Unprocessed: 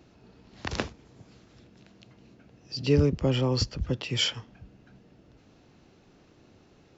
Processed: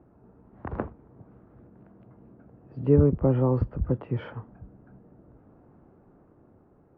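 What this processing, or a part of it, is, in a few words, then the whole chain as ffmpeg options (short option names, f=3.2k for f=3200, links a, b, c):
action camera in a waterproof case: -af "lowpass=f=1.3k:w=0.5412,lowpass=f=1.3k:w=1.3066,dynaudnorm=f=320:g=7:m=3dB" -ar 24000 -c:a aac -b:a 48k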